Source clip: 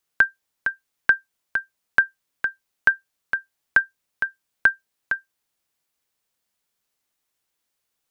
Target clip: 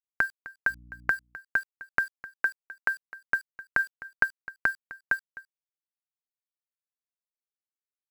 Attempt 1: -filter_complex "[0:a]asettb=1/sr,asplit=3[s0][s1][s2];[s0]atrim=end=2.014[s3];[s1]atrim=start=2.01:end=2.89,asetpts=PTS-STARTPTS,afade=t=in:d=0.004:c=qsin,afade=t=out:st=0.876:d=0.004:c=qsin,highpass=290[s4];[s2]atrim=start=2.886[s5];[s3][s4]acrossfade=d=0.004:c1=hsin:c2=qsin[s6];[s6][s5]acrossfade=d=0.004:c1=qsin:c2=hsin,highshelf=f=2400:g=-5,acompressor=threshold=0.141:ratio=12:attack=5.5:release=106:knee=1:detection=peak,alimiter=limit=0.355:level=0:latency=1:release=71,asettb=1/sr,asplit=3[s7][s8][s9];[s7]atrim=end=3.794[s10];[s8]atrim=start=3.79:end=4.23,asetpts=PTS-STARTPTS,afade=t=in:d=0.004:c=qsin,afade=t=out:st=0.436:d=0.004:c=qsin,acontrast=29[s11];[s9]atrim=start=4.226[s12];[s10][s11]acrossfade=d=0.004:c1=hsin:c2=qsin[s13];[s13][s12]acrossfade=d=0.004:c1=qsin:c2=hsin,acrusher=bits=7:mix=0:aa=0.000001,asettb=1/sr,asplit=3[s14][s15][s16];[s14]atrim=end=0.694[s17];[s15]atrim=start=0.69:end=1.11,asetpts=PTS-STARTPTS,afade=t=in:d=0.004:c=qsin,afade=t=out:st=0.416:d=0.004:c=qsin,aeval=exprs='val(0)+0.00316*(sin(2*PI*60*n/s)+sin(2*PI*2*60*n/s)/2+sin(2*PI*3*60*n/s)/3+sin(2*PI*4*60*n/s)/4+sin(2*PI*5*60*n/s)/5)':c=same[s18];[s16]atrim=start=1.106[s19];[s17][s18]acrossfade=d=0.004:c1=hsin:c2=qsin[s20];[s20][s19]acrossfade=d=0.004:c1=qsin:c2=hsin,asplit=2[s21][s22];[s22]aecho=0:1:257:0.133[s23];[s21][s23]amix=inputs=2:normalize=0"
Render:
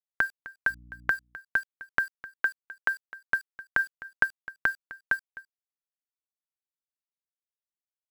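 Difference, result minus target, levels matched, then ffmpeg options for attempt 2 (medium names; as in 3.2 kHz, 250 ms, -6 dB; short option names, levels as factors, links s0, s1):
4 kHz band +3.0 dB
-filter_complex "[0:a]asettb=1/sr,asplit=3[s0][s1][s2];[s0]atrim=end=2.014[s3];[s1]atrim=start=2.01:end=2.89,asetpts=PTS-STARTPTS,afade=t=in:d=0.004:c=qsin,afade=t=out:st=0.876:d=0.004:c=qsin,highpass=290[s4];[s2]atrim=start=2.886[s5];[s3][s4]acrossfade=d=0.004:c1=hsin:c2=qsin[s6];[s6][s5]acrossfade=d=0.004:c1=qsin:c2=hsin,highshelf=f=2400:g=-5,acompressor=threshold=0.141:ratio=12:attack=5.5:release=106:knee=1:detection=peak,asuperstop=centerf=3400:order=4:qfactor=2.9,alimiter=limit=0.355:level=0:latency=1:release=71,asettb=1/sr,asplit=3[s7][s8][s9];[s7]atrim=end=3.794[s10];[s8]atrim=start=3.79:end=4.23,asetpts=PTS-STARTPTS,afade=t=in:d=0.004:c=qsin,afade=t=out:st=0.436:d=0.004:c=qsin,acontrast=29[s11];[s9]atrim=start=4.226[s12];[s10][s11]acrossfade=d=0.004:c1=hsin:c2=qsin[s13];[s13][s12]acrossfade=d=0.004:c1=qsin:c2=hsin,acrusher=bits=7:mix=0:aa=0.000001,asettb=1/sr,asplit=3[s14][s15][s16];[s14]atrim=end=0.694[s17];[s15]atrim=start=0.69:end=1.11,asetpts=PTS-STARTPTS,afade=t=in:d=0.004:c=qsin,afade=t=out:st=0.416:d=0.004:c=qsin,aeval=exprs='val(0)+0.00316*(sin(2*PI*60*n/s)+sin(2*PI*2*60*n/s)/2+sin(2*PI*3*60*n/s)/3+sin(2*PI*4*60*n/s)/4+sin(2*PI*5*60*n/s)/5)':c=same[s18];[s16]atrim=start=1.106[s19];[s17][s18]acrossfade=d=0.004:c1=hsin:c2=qsin[s20];[s20][s19]acrossfade=d=0.004:c1=qsin:c2=hsin,asplit=2[s21][s22];[s22]aecho=0:1:257:0.133[s23];[s21][s23]amix=inputs=2:normalize=0"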